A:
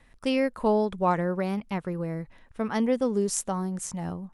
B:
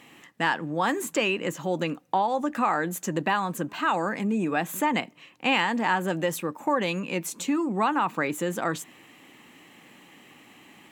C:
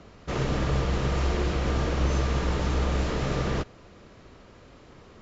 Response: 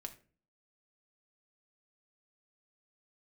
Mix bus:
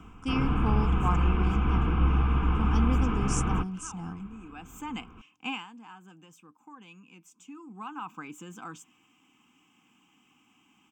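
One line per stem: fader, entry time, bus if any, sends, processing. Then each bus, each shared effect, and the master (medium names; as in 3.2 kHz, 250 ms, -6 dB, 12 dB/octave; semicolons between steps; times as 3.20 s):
-3.0 dB, 0.00 s, no send, none
5.50 s -8 dB -> 5.72 s -20.5 dB -> 7.39 s -20.5 dB -> 8.11 s -10.5 dB, 0.00 s, no send, auto duck -12 dB, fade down 0.30 s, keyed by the first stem
+2.0 dB, 0.00 s, no send, low-pass 2.5 kHz 24 dB/octave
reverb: none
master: static phaser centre 2.8 kHz, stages 8; comb 3.9 ms, depth 31%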